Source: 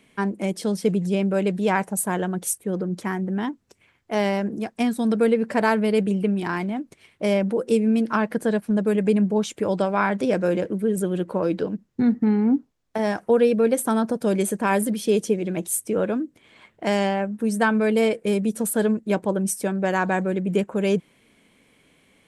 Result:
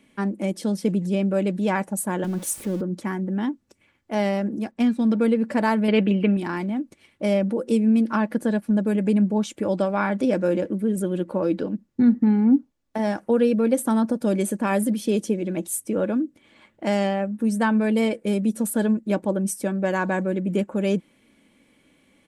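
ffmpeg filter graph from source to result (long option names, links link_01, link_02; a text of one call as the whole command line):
ffmpeg -i in.wav -filter_complex "[0:a]asettb=1/sr,asplit=3[link_01][link_02][link_03];[link_01]atrim=end=2.244[link_04];[link_02]atrim=start=2.24:end=2.81,asetpts=PTS-STARTPTS,afade=type=in:duration=0.004:curve=qsin,afade=type=out:start_time=0.566:duration=0.004:curve=qsin,aeval=exprs='val(0)+0.5*0.0237*sgn(val(0))':channel_layout=same,acrossover=split=390|3000[link_05][link_06][link_07];[link_06]acompressor=threshold=-35dB:ratio=2:attack=3.2:release=140:knee=2.83:detection=peak[link_08];[link_05][link_08][link_07]amix=inputs=3:normalize=0[link_09];[link_03]atrim=start=2.806[link_10];[link_04][link_09]acrossfade=duration=0.004:curve1=hsin:curve2=qsin[link_11];[link_11][link_10]acrossfade=duration=0.004:curve1=qsin:curve2=hsin,asettb=1/sr,asplit=3[link_12][link_13][link_14];[link_12]atrim=end=4.714[link_15];[link_13]atrim=start=4.71:end=5.24,asetpts=PTS-STARTPTS,afade=type=in:duration=0.004:curve=qsin,afade=type=out:start_time=0.526:duration=0.004:curve=qsin,bandreject=frequency=299.2:width_type=h:width=4,bandreject=frequency=598.4:width_type=h:width=4,bandreject=frequency=897.6:width_type=h:width=4,bandreject=frequency=1196.8:width_type=h:width=4,bandreject=frequency=1496:width_type=h:width=4,bandreject=frequency=1795.2:width_type=h:width=4,bandreject=frequency=2094.4:width_type=h:width=4,bandreject=frequency=2393.6:width_type=h:width=4,bandreject=frequency=2692.8:width_type=h:width=4,bandreject=frequency=2992:width_type=h:width=4,bandreject=frequency=3291.2:width_type=h:width=4,bandreject=frequency=3590.4:width_type=h:width=4,bandreject=frequency=3889.6:width_type=h:width=4,bandreject=frequency=4188.8:width_type=h:width=4,bandreject=frequency=4488:width_type=h:width=4,bandreject=frequency=4787.2:width_type=h:width=4,bandreject=frequency=5086.4:width_type=h:width=4,bandreject=frequency=5385.6:width_type=h:width=4,bandreject=frequency=5684.8:width_type=h:width=4,bandreject=frequency=5984:width_type=h:width=4,bandreject=frequency=6283.2:width_type=h:width=4,bandreject=frequency=6582.4:width_type=h:width=4,bandreject=frequency=6881.6:width_type=h:width=4,bandreject=frequency=7180.8:width_type=h:width=4,bandreject=frequency=7480:width_type=h:width=4,bandreject=frequency=7779.2:width_type=h:width=4,bandreject=frequency=8078.4:width_type=h:width=4,adynamicsmooth=sensitivity=6:basefreq=3800[link_16];[link_14]atrim=start=5.236[link_17];[link_15][link_16]acrossfade=duration=0.004:curve1=hsin:curve2=qsin[link_18];[link_18][link_17]acrossfade=duration=0.004:curve1=qsin:curve2=hsin,asettb=1/sr,asplit=3[link_19][link_20][link_21];[link_19]atrim=end=5.884[link_22];[link_20]atrim=start=5.88:end=6.37,asetpts=PTS-STARTPTS,afade=type=in:duration=0.004:curve=qsin,afade=type=out:start_time=0.486:duration=0.004:curve=qsin,lowshelf=frequency=170:gain=-9,acontrast=47,lowpass=frequency=2800:width_type=q:width=2.1[link_23];[link_21]atrim=start=6.366[link_24];[link_22][link_23]acrossfade=duration=0.004:curve1=hsin:curve2=qsin[link_25];[link_25][link_24]acrossfade=duration=0.004:curve1=qsin:curve2=hsin,equalizer=frequency=200:width_type=o:width=2.3:gain=4.5,aecho=1:1:3.5:0.39,volume=-3.5dB" out.wav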